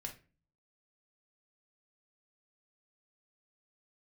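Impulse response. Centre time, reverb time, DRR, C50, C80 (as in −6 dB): 13 ms, non-exponential decay, 1.5 dB, 11.5 dB, 18.5 dB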